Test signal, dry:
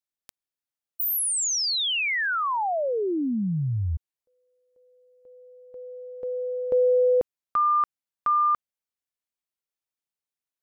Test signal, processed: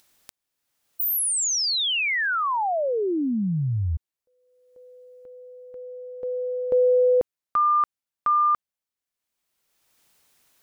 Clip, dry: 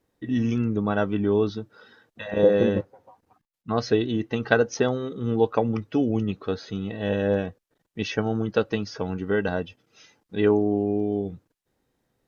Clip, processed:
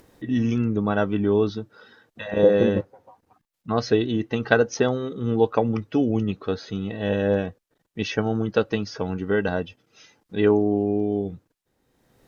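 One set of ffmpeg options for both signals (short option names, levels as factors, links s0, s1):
-af "acompressor=mode=upward:threshold=0.01:ratio=2.5:attack=2.4:release=748:knee=2.83:detection=peak,volume=1.19"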